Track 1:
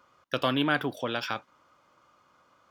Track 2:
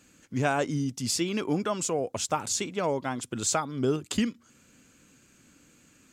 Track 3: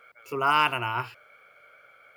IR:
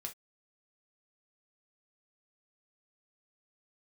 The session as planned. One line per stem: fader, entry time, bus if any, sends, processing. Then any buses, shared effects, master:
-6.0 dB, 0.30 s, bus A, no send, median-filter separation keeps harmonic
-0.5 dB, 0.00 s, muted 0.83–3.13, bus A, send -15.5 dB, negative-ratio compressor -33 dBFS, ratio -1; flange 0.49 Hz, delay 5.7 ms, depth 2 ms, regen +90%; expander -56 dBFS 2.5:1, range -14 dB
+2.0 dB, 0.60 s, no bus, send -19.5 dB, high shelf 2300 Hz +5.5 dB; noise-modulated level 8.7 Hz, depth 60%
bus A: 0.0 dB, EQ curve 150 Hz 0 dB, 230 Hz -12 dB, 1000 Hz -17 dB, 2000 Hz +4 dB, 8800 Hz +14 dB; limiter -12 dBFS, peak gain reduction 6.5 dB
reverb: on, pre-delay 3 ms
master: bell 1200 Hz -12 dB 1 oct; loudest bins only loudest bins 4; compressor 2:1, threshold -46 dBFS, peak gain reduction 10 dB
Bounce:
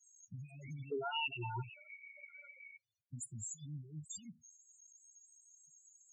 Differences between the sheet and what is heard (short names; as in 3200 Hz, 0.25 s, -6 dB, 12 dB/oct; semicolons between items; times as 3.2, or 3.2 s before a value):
stem 1 -6.0 dB -> -12.5 dB; stem 2: send -15.5 dB -> -21.5 dB; stem 3 +2.0 dB -> +9.5 dB